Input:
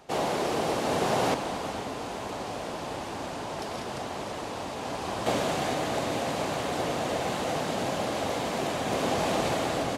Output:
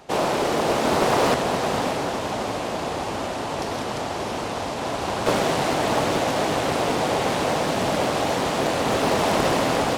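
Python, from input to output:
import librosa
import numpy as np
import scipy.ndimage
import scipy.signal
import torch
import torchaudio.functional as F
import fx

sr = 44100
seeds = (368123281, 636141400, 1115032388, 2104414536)

y = fx.echo_diffused(x, sr, ms=594, feedback_pct=41, wet_db=-5.5)
y = fx.doppler_dist(y, sr, depth_ms=0.71)
y = y * 10.0 ** (6.0 / 20.0)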